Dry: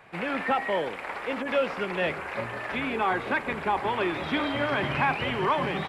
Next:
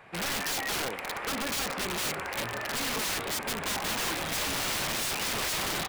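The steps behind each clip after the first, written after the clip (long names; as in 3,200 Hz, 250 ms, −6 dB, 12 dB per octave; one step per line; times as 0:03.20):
wrap-around overflow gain 26 dB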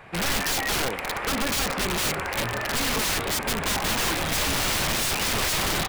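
low-shelf EQ 100 Hz +10 dB
level +5.5 dB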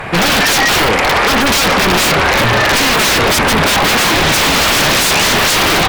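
sine wavefolder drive 11 dB, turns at −16 dBFS
level +8 dB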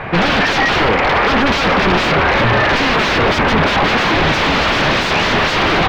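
high-frequency loss of the air 230 metres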